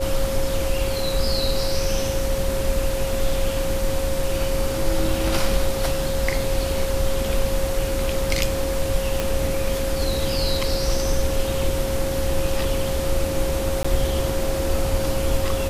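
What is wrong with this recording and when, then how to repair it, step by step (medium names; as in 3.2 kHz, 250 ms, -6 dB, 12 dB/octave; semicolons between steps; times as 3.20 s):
whine 540 Hz -25 dBFS
9.20 s: pop -8 dBFS
13.83–13.85 s: dropout 15 ms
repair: de-click; band-stop 540 Hz, Q 30; interpolate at 13.83 s, 15 ms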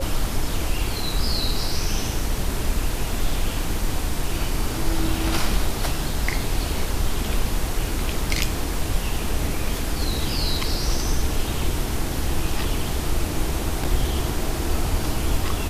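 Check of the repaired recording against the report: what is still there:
9.20 s: pop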